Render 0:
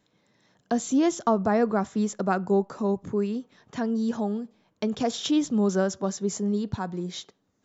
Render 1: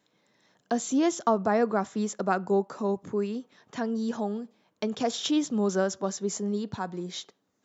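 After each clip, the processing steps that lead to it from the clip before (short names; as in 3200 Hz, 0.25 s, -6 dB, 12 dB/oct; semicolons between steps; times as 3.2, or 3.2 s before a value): HPF 260 Hz 6 dB/oct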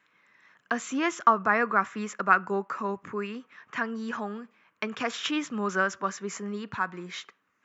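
band shelf 1700 Hz +16 dB; gain -5 dB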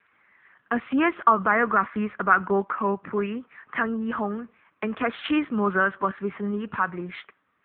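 LPF 2600 Hz 12 dB/oct; in parallel at +2 dB: limiter -19 dBFS, peak gain reduction 11.5 dB; on the sum: AMR-NB 6.7 kbps 8000 Hz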